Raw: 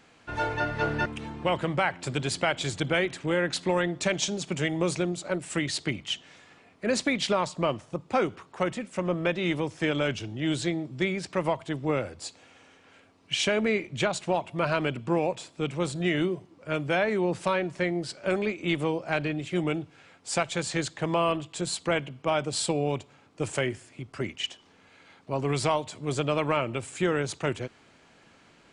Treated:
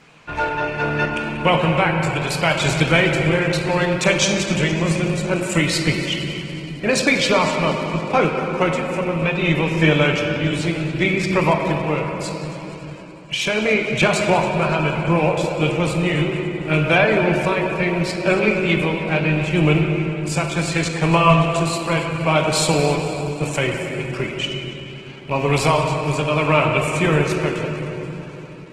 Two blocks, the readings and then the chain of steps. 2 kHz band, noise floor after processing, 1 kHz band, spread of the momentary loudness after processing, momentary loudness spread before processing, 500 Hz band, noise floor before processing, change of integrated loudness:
+11.0 dB, -34 dBFS, +10.0 dB, 10 LU, 7 LU, +8.5 dB, -58 dBFS, +9.5 dB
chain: rattle on loud lows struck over -36 dBFS, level -34 dBFS; graphic EQ with 31 bands 100 Hz -8 dB, 160 Hz +7 dB, 250 Hz -4 dB, 1 kHz +4 dB, 2.5 kHz +7 dB; tremolo 0.71 Hz, depth 50%; on a send: multi-head delay 93 ms, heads second and third, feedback 61%, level -16 dB; on the sum: simulated room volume 200 m³, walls hard, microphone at 0.36 m; trim +8 dB; Opus 16 kbps 48 kHz

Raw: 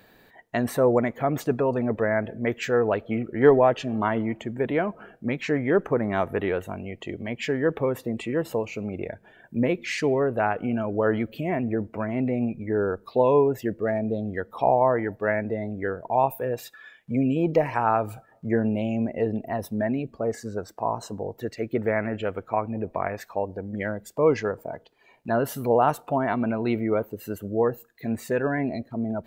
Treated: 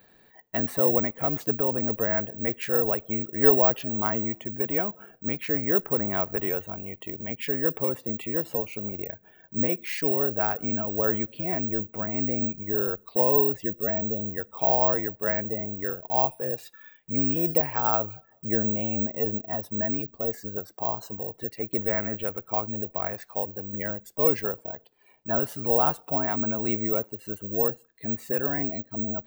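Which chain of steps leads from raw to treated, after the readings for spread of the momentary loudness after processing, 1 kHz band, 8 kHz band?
11 LU, -5.0 dB, no reading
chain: careless resampling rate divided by 2×, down filtered, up zero stuff; trim -5 dB

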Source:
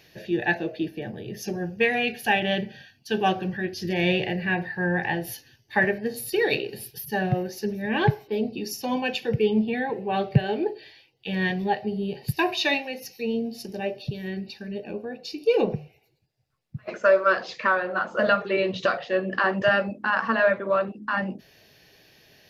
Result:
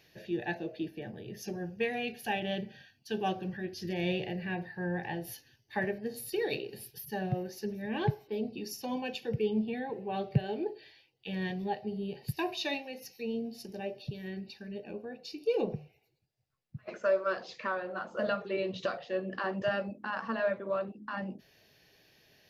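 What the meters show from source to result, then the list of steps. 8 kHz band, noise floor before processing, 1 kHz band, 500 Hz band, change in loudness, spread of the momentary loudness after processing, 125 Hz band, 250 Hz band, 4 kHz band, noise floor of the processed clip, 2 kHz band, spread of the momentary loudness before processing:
-8.0 dB, -62 dBFS, -10.5 dB, -9.0 dB, -10.0 dB, 11 LU, -8.0 dB, -8.0 dB, -10.0 dB, -70 dBFS, -13.5 dB, 12 LU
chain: dynamic bell 1.7 kHz, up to -6 dB, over -37 dBFS, Q 0.86; trim -8 dB

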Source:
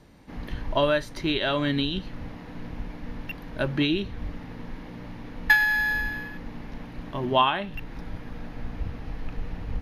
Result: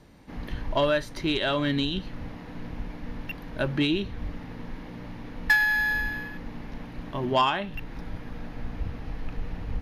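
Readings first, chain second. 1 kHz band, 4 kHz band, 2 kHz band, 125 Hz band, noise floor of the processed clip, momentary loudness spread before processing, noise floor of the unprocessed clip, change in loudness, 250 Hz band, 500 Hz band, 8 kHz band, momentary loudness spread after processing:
-1.5 dB, -1.0 dB, -1.0 dB, -0.5 dB, -41 dBFS, 18 LU, -41 dBFS, -1.5 dB, -0.5 dB, -1.0 dB, no reading, 17 LU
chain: saturation -13 dBFS, distortion -19 dB

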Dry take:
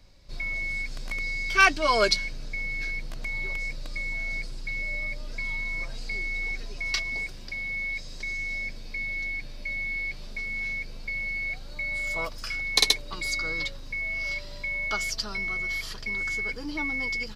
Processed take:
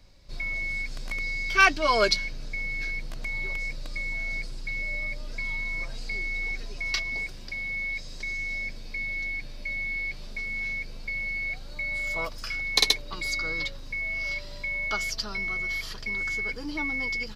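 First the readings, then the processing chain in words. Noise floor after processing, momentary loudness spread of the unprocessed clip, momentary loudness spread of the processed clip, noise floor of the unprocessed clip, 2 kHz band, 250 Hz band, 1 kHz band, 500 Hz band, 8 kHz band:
-39 dBFS, 11 LU, 10 LU, -39 dBFS, 0.0 dB, 0.0 dB, 0.0 dB, 0.0 dB, -2.0 dB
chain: dynamic bell 8.6 kHz, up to -5 dB, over -49 dBFS, Q 1.8

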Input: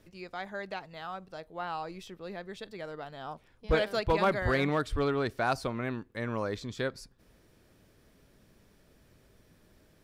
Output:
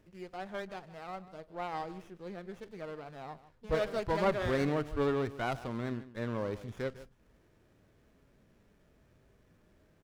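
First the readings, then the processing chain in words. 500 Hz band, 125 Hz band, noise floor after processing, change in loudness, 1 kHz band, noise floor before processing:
-2.0 dB, -2.5 dB, -67 dBFS, -3.0 dB, -4.5 dB, -64 dBFS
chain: harmonic-percussive split percussive -9 dB; echo from a far wall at 26 m, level -16 dB; sliding maximum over 9 samples

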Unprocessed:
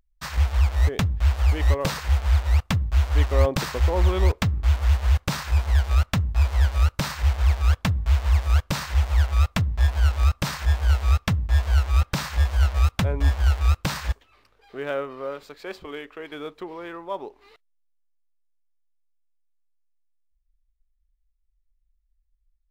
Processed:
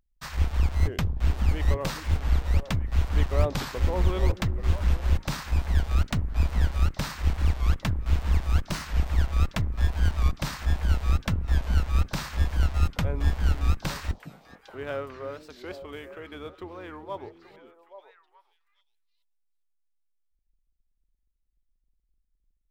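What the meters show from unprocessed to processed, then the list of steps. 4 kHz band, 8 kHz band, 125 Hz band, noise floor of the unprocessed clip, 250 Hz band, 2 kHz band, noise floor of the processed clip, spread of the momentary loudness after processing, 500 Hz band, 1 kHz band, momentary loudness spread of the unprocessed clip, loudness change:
-5.0 dB, -5.0 dB, -4.5 dB, -69 dBFS, -2.0 dB, -5.0 dB, -73 dBFS, 13 LU, -4.5 dB, -4.5 dB, 13 LU, -4.5 dB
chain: octave divider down 2 oct, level -3 dB; repeats whose band climbs or falls 416 ms, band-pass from 240 Hz, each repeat 1.4 oct, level -6.5 dB; warped record 45 rpm, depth 160 cents; trim -5 dB

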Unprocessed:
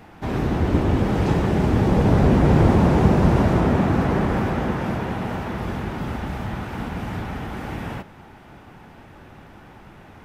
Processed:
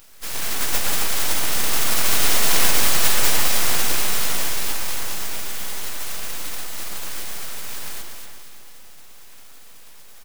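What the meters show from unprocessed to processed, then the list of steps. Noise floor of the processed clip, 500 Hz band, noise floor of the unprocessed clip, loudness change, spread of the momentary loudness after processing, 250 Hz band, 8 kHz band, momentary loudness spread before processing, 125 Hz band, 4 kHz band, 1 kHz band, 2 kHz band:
-40 dBFS, -10.5 dB, -46 dBFS, -0.5 dB, 15 LU, -17.5 dB, no reading, 14 LU, -17.5 dB, +15.0 dB, -4.5 dB, +4.5 dB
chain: spectral contrast reduction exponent 0.14; speakerphone echo 300 ms, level -8 dB; full-wave rectifier; on a send: echo whose repeats swap between lows and highs 118 ms, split 2.3 kHz, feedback 70%, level -2.5 dB; on the sum: trim -1.5 dB

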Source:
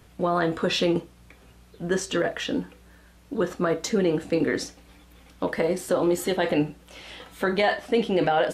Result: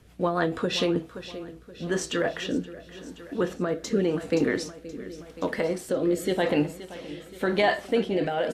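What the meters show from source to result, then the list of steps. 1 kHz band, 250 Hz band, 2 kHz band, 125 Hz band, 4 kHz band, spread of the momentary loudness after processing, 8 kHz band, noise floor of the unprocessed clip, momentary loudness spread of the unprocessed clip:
-3.5 dB, -1.0 dB, -1.5 dB, -1.5 dB, -2.0 dB, 15 LU, -2.5 dB, -54 dBFS, 12 LU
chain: feedback delay 524 ms, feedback 59%, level -14 dB; rotary cabinet horn 6.7 Hz, later 0.9 Hz, at 0.33 s

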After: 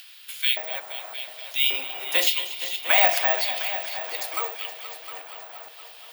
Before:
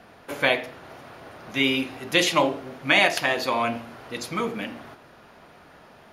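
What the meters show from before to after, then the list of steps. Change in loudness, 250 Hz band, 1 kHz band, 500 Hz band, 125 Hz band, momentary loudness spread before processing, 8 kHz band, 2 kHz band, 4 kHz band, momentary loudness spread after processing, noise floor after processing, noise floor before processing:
+0.5 dB, -23.0 dB, -2.5 dB, -6.0 dB, under -40 dB, 18 LU, +1.0 dB, -3.0 dB, +1.5 dB, 20 LU, -46 dBFS, -51 dBFS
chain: chunks repeated in reverse 307 ms, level -13 dB; LFO high-pass square 0.88 Hz 720–3200 Hz; treble shelf 4.6 kHz +8 dB; band-stop 6.1 kHz, Q 21; in parallel at -0.5 dB: upward compressor, threshold -26 dBFS; on the sum: steep high-pass 270 Hz 96 dB/octave; on a send: multi-head delay 236 ms, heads all three, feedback 54%, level -15.5 dB; on the sum: careless resampling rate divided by 2×, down none, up zero stuff; trim -11.5 dB

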